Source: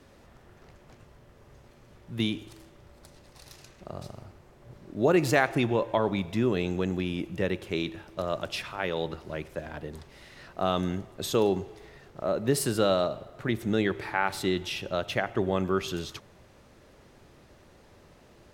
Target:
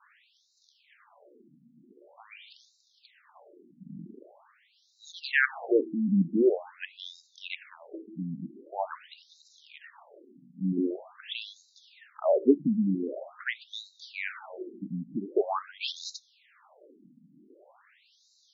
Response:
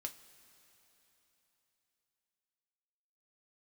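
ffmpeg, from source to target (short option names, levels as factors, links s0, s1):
-af "adynamicequalizer=threshold=0.01:dfrequency=240:dqfactor=1.2:tfrequency=240:tqfactor=1.2:attack=5:release=100:ratio=0.375:range=2:mode=boostabove:tftype=bell,acontrast=70,afftfilt=real='re*between(b*sr/1024,200*pow(5300/200,0.5+0.5*sin(2*PI*0.45*pts/sr))/1.41,200*pow(5300/200,0.5+0.5*sin(2*PI*0.45*pts/sr))*1.41)':imag='im*between(b*sr/1024,200*pow(5300/200,0.5+0.5*sin(2*PI*0.45*pts/sr))/1.41,200*pow(5300/200,0.5+0.5*sin(2*PI*0.45*pts/sr))*1.41)':win_size=1024:overlap=0.75,volume=0.841"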